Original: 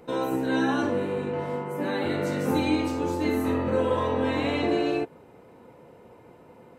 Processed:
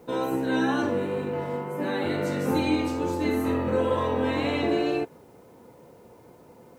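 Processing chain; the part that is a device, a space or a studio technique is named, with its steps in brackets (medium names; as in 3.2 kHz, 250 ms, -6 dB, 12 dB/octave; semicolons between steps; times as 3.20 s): plain cassette with noise reduction switched in (tape noise reduction on one side only decoder only; wow and flutter 19 cents; white noise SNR 41 dB)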